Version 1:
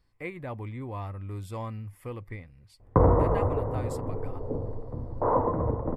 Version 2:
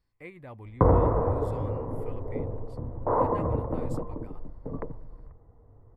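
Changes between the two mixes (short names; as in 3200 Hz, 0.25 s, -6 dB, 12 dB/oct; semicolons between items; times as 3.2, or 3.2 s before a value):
speech -7.5 dB; background: entry -2.15 s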